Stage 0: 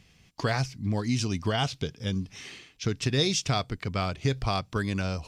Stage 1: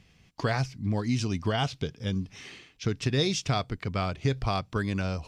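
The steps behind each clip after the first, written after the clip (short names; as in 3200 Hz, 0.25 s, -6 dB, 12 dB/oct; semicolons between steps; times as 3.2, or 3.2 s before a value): high shelf 4100 Hz -6 dB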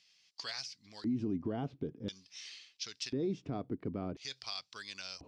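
LFO band-pass square 0.48 Hz 300–4800 Hz; limiter -31.5 dBFS, peak gain reduction 9 dB; gain +4.5 dB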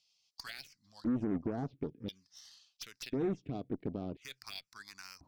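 added harmonics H 2 -17 dB, 7 -23 dB, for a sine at -26.5 dBFS; envelope phaser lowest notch 290 Hz, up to 4900 Hz, full sweep at -31 dBFS; gain +1.5 dB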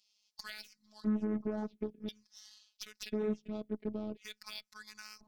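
robotiser 213 Hz; gain +2 dB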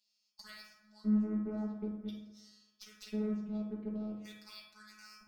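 reverb RT60 1.1 s, pre-delay 5 ms, DRR -3 dB; gain -8.5 dB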